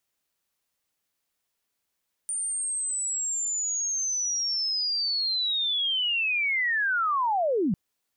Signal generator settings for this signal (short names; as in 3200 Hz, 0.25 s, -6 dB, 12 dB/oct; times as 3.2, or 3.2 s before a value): chirp linear 9100 Hz -> 160 Hz -27 dBFS -> -21.5 dBFS 5.45 s